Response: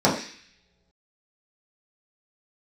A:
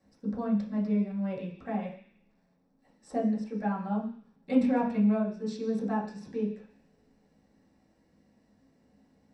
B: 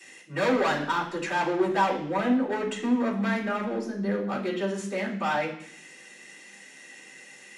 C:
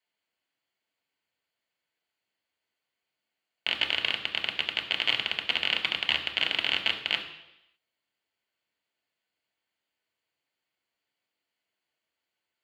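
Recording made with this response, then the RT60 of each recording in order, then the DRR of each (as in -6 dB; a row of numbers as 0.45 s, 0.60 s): A; no single decay rate, 0.65 s, 0.85 s; -7.0 dB, -13.5 dB, 2.5 dB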